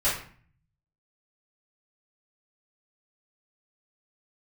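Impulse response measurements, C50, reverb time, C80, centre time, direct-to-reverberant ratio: 4.0 dB, 0.45 s, 9.0 dB, 39 ms, −12.5 dB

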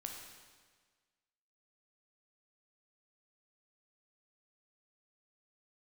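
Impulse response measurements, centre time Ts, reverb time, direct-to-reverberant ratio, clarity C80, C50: 56 ms, 1.5 s, 1.0 dB, 5.0 dB, 3.0 dB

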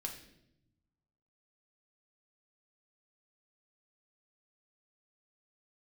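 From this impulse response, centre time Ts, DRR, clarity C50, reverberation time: 22 ms, 2.0 dB, 8.0 dB, 0.80 s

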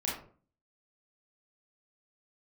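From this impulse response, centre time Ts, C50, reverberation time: 41 ms, 4.0 dB, 0.45 s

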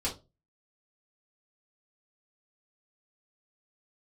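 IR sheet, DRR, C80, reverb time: −7.0 dB, 20.5 dB, 0.25 s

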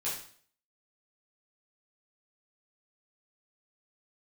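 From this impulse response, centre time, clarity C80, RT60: 40 ms, 8.5 dB, 0.50 s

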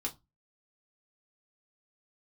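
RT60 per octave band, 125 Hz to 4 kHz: 0.40, 0.30, 0.20, 0.20, 0.15, 0.15 seconds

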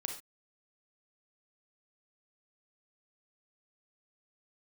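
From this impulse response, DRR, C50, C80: 3.5 dB, 6.5 dB, 12.0 dB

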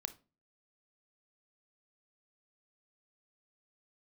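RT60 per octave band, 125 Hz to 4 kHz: 0.50, 0.45, 0.35, 0.30, 0.25, 0.25 seconds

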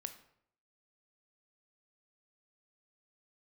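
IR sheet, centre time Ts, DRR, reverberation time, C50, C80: 9 ms, 8.0 dB, 0.70 s, 11.5 dB, 14.5 dB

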